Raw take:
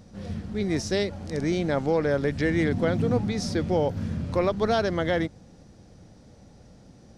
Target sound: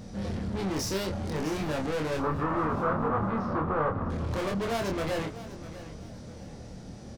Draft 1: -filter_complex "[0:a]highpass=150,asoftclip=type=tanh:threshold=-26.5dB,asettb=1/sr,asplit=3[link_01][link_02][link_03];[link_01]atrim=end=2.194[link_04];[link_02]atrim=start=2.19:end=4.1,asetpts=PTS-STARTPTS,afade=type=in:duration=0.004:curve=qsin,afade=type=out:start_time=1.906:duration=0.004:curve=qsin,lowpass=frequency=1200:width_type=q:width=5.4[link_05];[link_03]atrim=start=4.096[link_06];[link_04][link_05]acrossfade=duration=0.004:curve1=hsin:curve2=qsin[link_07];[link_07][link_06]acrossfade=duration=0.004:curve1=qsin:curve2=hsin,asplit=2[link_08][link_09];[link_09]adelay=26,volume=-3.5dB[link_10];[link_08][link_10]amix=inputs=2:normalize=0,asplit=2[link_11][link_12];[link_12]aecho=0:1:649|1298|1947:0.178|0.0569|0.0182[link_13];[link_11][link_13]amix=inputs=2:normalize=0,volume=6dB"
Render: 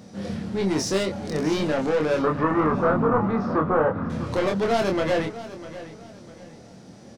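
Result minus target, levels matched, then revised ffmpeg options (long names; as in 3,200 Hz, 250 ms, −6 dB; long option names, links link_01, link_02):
125 Hz band −3.5 dB; soft clipping: distortion −5 dB
-filter_complex "[0:a]asoftclip=type=tanh:threshold=-36.5dB,asettb=1/sr,asplit=3[link_01][link_02][link_03];[link_01]atrim=end=2.194[link_04];[link_02]atrim=start=2.19:end=4.1,asetpts=PTS-STARTPTS,afade=type=in:duration=0.004:curve=qsin,afade=type=out:start_time=1.906:duration=0.004:curve=qsin,lowpass=frequency=1200:width_type=q:width=5.4[link_05];[link_03]atrim=start=4.096[link_06];[link_04][link_05]acrossfade=duration=0.004:curve1=hsin:curve2=qsin[link_07];[link_07][link_06]acrossfade=duration=0.004:curve1=qsin:curve2=hsin,asplit=2[link_08][link_09];[link_09]adelay=26,volume=-3.5dB[link_10];[link_08][link_10]amix=inputs=2:normalize=0,asplit=2[link_11][link_12];[link_12]aecho=0:1:649|1298|1947:0.178|0.0569|0.0182[link_13];[link_11][link_13]amix=inputs=2:normalize=0,volume=6dB"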